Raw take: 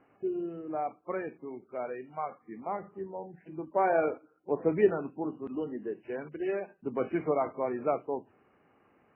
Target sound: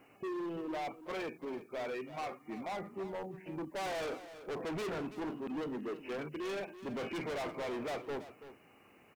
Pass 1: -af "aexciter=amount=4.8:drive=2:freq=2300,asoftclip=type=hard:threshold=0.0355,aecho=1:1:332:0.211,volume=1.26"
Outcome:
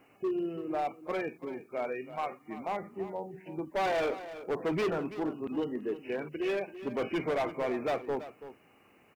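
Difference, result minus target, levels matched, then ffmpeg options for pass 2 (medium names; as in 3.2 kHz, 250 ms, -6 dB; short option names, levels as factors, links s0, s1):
hard clipper: distortion -5 dB
-af "aexciter=amount=4.8:drive=2:freq=2300,asoftclip=type=hard:threshold=0.0119,aecho=1:1:332:0.211,volume=1.26"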